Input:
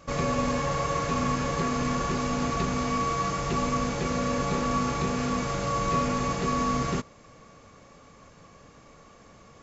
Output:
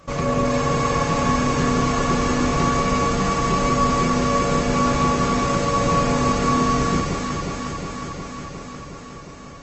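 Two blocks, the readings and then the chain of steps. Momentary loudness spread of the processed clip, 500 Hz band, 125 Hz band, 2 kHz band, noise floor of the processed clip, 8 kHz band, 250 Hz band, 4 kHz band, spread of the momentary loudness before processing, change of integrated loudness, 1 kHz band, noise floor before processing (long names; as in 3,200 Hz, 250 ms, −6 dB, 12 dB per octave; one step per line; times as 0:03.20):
15 LU, +8.0 dB, +7.5 dB, +7.5 dB, −38 dBFS, can't be measured, +8.0 dB, +7.5 dB, 2 LU, +7.0 dB, +7.5 dB, −53 dBFS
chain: delay that swaps between a low-pass and a high-pass 180 ms, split 950 Hz, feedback 86%, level −2 dB
level +4.5 dB
Opus 20 kbit/s 48,000 Hz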